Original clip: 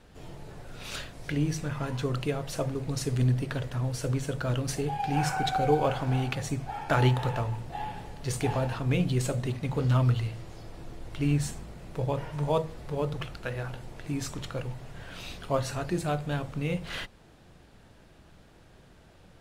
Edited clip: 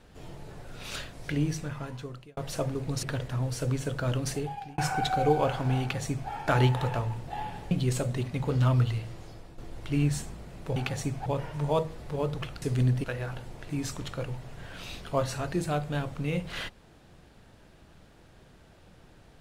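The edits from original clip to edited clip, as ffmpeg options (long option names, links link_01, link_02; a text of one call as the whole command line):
ffmpeg -i in.wav -filter_complex "[0:a]asplit=10[link_01][link_02][link_03][link_04][link_05][link_06][link_07][link_08][link_09][link_10];[link_01]atrim=end=2.37,asetpts=PTS-STARTPTS,afade=type=out:start_time=1.41:duration=0.96[link_11];[link_02]atrim=start=2.37:end=3.032,asetpts=PTS-STARTPTS,afade=type=in:duration=0.004:curve=hsin[link_12];[link_03]atrim=start=3.448:end=5.2,asetpts=PTS-STARTPTS,afade=type=out:start_time=1.282:duration=0.47[link_13];[link_04]atrim=start=5.2:end=8.132,asetpts=PTS-STARTPTS,afade=type=in:duration=0.004:curve=hsin[link_14];[link_05]atrim=start=8.998:end=10.87,asetpts=PTS-STARTPTS,afade=type=out:start_time=1.392:duration=0.48:curve=qsin:silence=0.375837[link_15];[link_06]atrim=start=10.87:end=12.052,asetpts=PTS-STARTPTS,afade=type=in:duration=0.004:curve=hsin:silence=0.375837[link_16];[link_07]atrim=start=6.218:end=6.722[link_17];[link_08]atrim=start=12.048:end=13.412[link_18];[link_09]atrim=start=3.028:end=3.452[link_19];[link_10]atrim=start=13.408[link_20];[link_11][link_12]concat=n=2:v=0:a=1[link_21];[link_13][link_14]concat=n=2:v=0:a=1[link_22];[link_21][link_22]acrossfade=duration=0.004:curve1=hsin:curve2=hsin[link_23];[link_15][link_16]concat=n=2:v=0:a=1[link_24];[link_23][link_24]acrossfade=duration=0.004:curve1=hsin:curve2=hsin[link_25];[link_25][link_17]acrossfade=duration=0.004:curve1=hsin:curve2=hsin[link_26];[link_26][link_18]acrossfade=duration=0.004:curve1=hsin:curve2=hsin[link_27];[link_27][link_19]acrossfade=duration=0.004:curve1=hsin:curve2=hsin[link_28];[link_28][link_20]acrossfade=duration=0.004:curve1=hsin:curve2=hsin" out.wav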